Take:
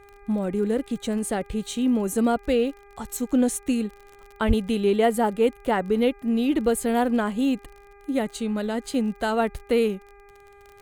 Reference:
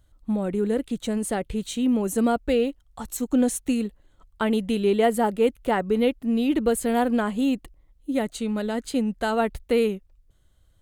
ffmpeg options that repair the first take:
-filter_complex "[0:a]adeclick=t=4,bandreject=f=403.1:t=h:w=4,bandreject=f=806.2:t=h:w=4,bandreject=f=1.2093k:t=h:w=4,bandreject=f=1.6124k:t=h:w=4,bandreject=f=2.0155k:t=h:w=4,bandreject=f=2.4186k:t=h:w=4,asplit=3[a][b][c];[a]afade=t=out:st=4.47:d=0.02[d];[b]highpass=f=140:w=0.5412,highpass=f=140:w=1.3066,afade=t=in:st=4.47:d=0.02,afade=t=out:st=4.59:d=0.02[e];[c]afade=t=in:st=4.59:d=0.02[f];[d][e][f]amix=inputs=3:normalize=0"

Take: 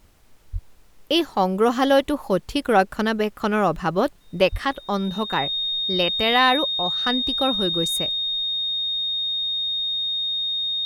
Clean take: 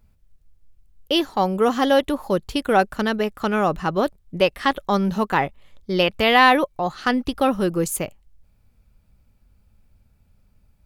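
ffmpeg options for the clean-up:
-filter_complex "[0:a]bandreject=f=3.7k:w=30,asplit=3[a][b][c];[a]afade=t=out:st=0.52:d=0.02[d];[b]highpass=f=140:w=0.5412,highpass=f=140:w=1.3066,afade=t=in:st=0.52:d=0.02,afade=t=out:st=0.64:d=0.02[e];[c]afade=t=in:st=0.64:d=0.02[f];[d][e][f]amix=inputs=3:normalize=0,asplit=3[g][h][i];[g]afade=t=out:st=4.51:d=0.02[j];[h]highpass=f=140:w=0.5412,highpass=f=140:w=1.3066,afade=t=in:st=4.51:d=0.02,afade=t=out:st=4.63:d=0.02[k];[i]afade=t=in:st=4.63:d=0.02[l];[j][k][l]amix=inputs=3:normalize=0,agate=range=-21dB:threshold=-39dB,asetnsamples=n=441:p=0,asendcmd='4.65 volume volume 4dB',volume=0dB"

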